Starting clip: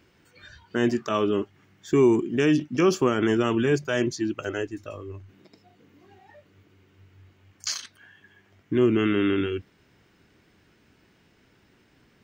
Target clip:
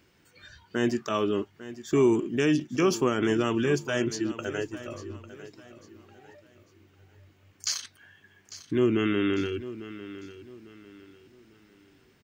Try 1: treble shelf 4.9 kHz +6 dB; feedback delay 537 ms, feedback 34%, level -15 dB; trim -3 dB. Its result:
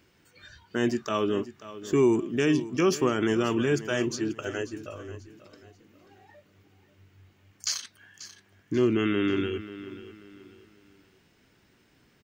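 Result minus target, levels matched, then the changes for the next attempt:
echo 312 ms early
change: feedback delay 849 ms, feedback 34%, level -15 dB

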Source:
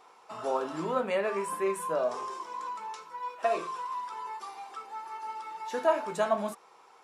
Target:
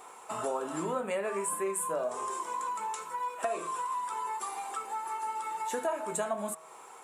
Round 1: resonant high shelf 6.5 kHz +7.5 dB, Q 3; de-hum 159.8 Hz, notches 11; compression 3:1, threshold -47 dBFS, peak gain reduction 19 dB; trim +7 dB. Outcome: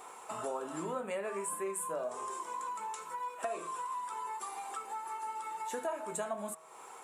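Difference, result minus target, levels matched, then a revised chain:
compression: peak gain reduction +4.5 dB
resonant high shelf 6.5 kHz +7.5 dB, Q 3; de-hum 159.8 Hz, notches 11; compression 3:1, threshold -40 dBFS, peak gain reduction 14.5 dB; trim +7 dB

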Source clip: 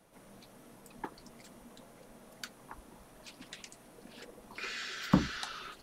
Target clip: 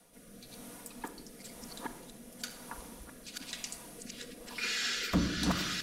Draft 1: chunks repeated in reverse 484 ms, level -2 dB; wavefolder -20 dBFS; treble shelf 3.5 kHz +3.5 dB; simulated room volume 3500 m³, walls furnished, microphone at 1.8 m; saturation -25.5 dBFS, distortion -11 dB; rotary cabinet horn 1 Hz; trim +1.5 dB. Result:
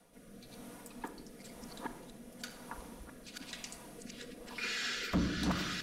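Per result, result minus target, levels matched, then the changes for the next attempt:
saturation: distortion +7 dB; 8 kHz band -3.5 dB
change: saturation -19.5 dBFS, distortion -19 dB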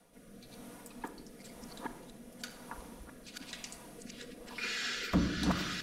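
8 kHz band -4.5 dB
change: treble shelf 3.5 kHz +11 dB

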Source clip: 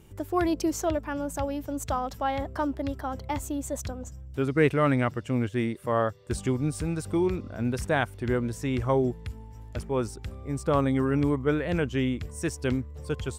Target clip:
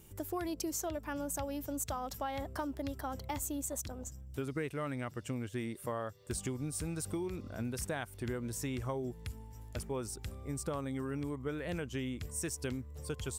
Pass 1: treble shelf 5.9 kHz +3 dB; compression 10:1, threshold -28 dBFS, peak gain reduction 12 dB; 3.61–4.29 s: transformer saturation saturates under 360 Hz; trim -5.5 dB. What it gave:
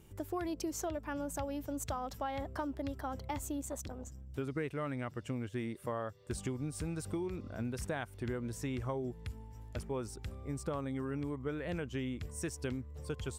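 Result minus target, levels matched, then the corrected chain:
8 kHz band -5.0 dB
treble shelf 5.9 kHz +14 dB; compression 10:1, threshold -28 dBFS, peak gain reduction 12.5 dB; 3.61–4.29 s: transformer saturation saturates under 360 Hz; trim -5.5 dB

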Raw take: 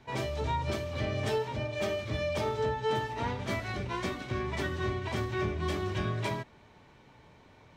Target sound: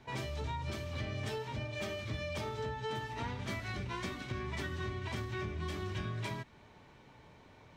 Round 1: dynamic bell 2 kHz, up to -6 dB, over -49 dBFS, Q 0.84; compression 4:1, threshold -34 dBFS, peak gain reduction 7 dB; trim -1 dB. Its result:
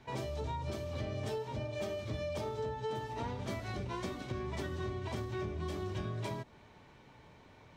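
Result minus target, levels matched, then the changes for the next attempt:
2 kHz band -5.5 dB
change: dynamic bell 560 Hz, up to -6 dB, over -49 dBFS, Q 0.84

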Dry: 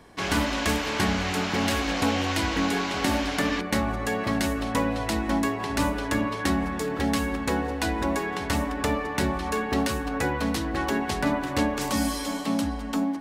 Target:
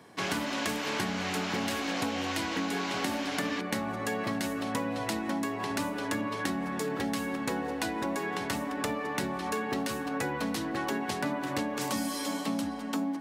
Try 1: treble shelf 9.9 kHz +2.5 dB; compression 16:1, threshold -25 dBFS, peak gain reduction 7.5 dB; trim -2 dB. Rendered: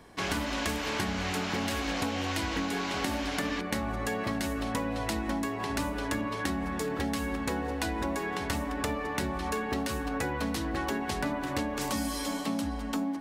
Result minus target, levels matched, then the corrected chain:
125 Hz band +3.5 dB
treble shelf 9.9 kHz +2.5 dB; compression 16:1, threshold -25 dBFS, peak gain reduction 7.5 dB; high-pass 110 Hz 24 dB/octave; trim -2 dB

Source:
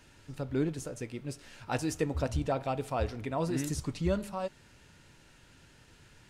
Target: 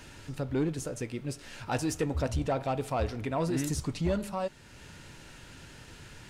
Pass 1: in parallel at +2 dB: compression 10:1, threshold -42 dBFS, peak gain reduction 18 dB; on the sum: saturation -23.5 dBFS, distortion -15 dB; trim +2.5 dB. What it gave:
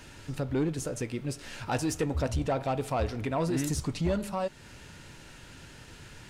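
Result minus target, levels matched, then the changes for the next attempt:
compression: peak gain reduction -10 dB
change: compression 10:1, threshold -53 dBFS, peak gain reduction 28 dB

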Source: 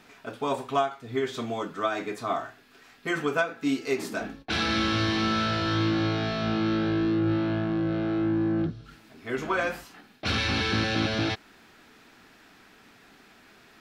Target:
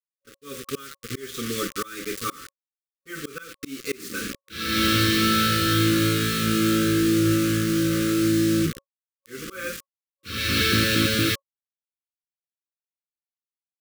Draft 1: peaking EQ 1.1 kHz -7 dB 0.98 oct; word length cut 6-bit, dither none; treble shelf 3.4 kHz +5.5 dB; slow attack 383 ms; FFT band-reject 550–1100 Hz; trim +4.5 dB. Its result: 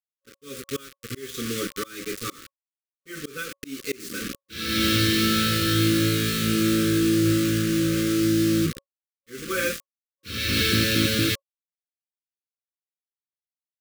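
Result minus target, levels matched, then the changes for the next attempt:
1 kHz band -4.0 dB
remove: peaking EQ 1.1 kHz -7 dB 0.98 oct

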